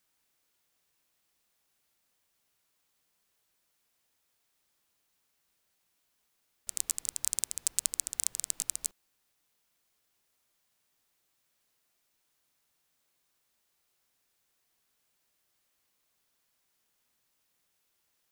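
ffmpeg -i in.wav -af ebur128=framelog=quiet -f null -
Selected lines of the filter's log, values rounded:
Integrated loudness:
  I:         -32.2 LUFS
  Threshold: -42.3 LUFS
Loudness range:
  LRA:        10.2 LU
  Threshold: -55.4 LUFS
  LRA low:   -43.2 LUFS
  LRA high:  -33.0 LUFS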